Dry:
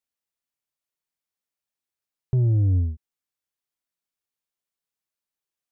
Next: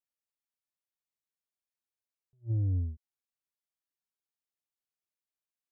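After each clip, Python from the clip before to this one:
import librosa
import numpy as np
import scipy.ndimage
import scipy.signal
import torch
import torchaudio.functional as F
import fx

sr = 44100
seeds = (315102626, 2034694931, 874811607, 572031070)

y = fx.attack_slew(x, sr, db_per_s=370.0)
y = y * librosa.db_to_amplitude(-9.0)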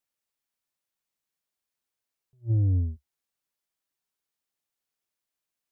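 y = fx.peak_eq(x, sr, hz=70.0, db=-6.0, octaves=0.32)
y = y * librosa.db_to_amplitude(6.5)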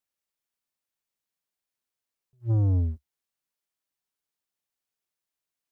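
y = fx.leveller(x, sr, passes=1)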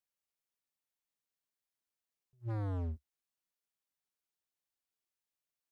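y = np.clip(x, -10.0 ** (-29.5 / 20.0), 10.0 ** (-29.5 / 20.0))
y = y * librosa.db_to_amplitude(-5.5)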